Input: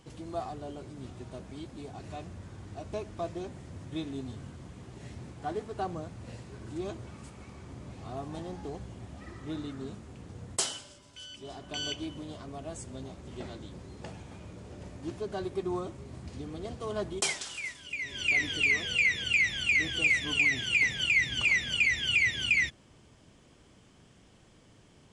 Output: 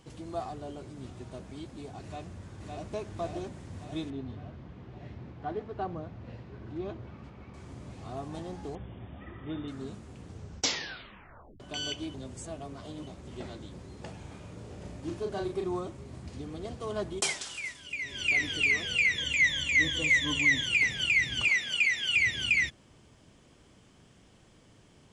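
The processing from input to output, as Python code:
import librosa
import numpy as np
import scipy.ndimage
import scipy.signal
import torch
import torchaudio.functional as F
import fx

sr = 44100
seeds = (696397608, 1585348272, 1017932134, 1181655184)

y = fx.echo_throw(x, sr, start_s=2.04, length_s=0.88, ms=560, feedback_pct=65, wet_db=-2.0)
y = fx.air_absorb(y, sr, metres=250.0, at=(4.1, 7.54))
y = fx.brickwall_lowpass(y, sr, high_hz=3700.0, at=(8.75, 9.68))
y = fx.doubler(y, sr, ms=35.0, db=-4.5, at=(14.18, 15.69))
y = fx.ripple_eq(y, sr, per_octave=1.1, db=12, at=(19.18, 20.67))
y = fx.highpass(y, sr, hz=440.0, slope=6, at=(21.48, 22.16))
y = fx.edit(y, sr, fx.tape_stop(start_s=10.27, length_s=1.33),
    fx.reverse_span(start_s=12.14, length_s=0.93), tone=tone)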